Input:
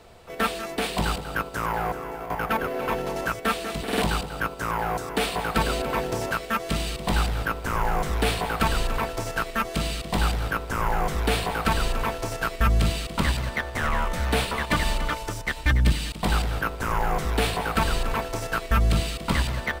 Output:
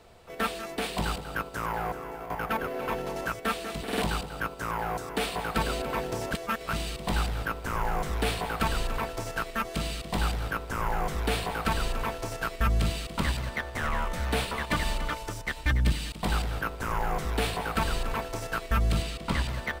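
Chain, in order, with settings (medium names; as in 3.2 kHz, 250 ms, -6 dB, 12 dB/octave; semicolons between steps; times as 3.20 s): 6.33–6.73 s: reverse; 19.02–19.49 s: treble shelf 9.1 kHz -7 dB; trim -4.5 dB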